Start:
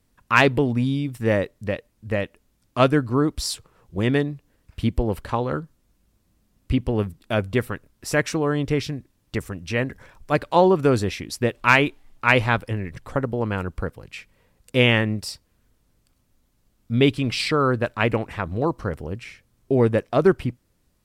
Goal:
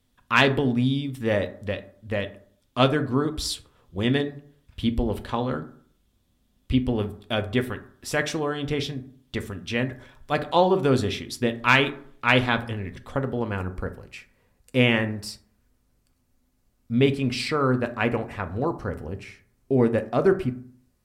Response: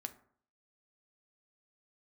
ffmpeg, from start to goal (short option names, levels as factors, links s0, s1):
-filter_complex "[0:a]asetnsamples=n=441:p=0,asendcmd='13.5 equalizer g -2.5',equalizer=f=3400:t=o:w=0.4:g=9.5[s0];[1:a]atrim=start_sample=2205[s1];[s0][s1]afir=irnorm=-1:irlink=0"